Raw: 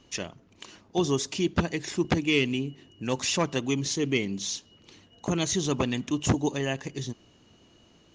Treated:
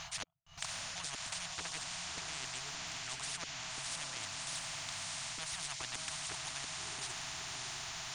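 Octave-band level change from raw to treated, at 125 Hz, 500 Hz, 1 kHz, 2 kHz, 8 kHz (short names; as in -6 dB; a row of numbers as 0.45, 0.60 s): -21.5, -24.0, -9.5, -8.5, -4.5 dB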